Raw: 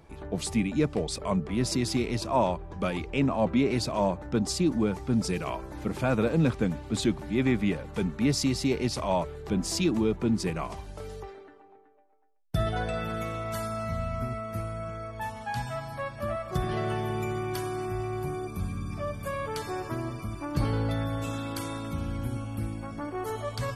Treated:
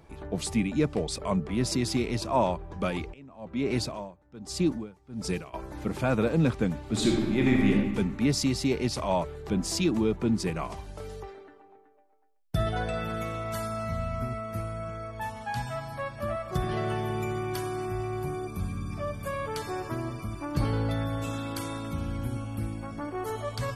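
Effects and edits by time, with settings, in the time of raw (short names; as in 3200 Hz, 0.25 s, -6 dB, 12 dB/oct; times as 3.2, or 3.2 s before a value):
3.12–5.53 dB-linear tremolo 0.78 Hz -> 1.8 Hz, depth 24 dB
6.83–7.7 reverb throw, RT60 1.4 s, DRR -0.5 dB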